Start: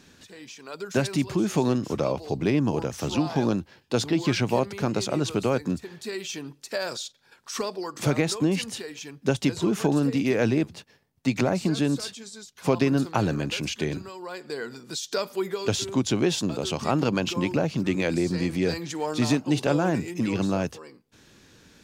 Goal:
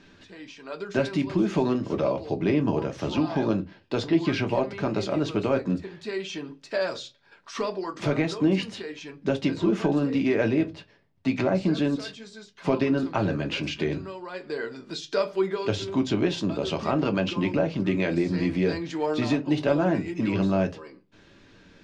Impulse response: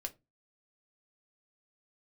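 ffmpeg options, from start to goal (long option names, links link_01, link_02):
-filter_complex "[0:a]lowpass=3600,asplit=2[link_01][link_02];[link_02]alimiter=limit=-16.5dB:level=0:latency=1:release=443,volume=0.5dB[link_03];[link_01][link_03]amix=inputs=2:normalize=0[link_04];[1:a]atrim=start_sample=2205[link_05];[link_04][link_05]afir=irnorm=-1:irlink=0,volume=-3dB"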